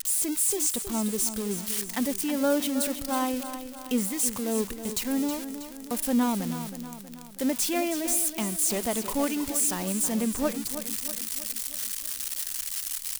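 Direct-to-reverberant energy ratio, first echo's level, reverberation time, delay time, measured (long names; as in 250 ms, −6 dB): no reverb audible, −10.5 dB, no reverb audible, 320 ms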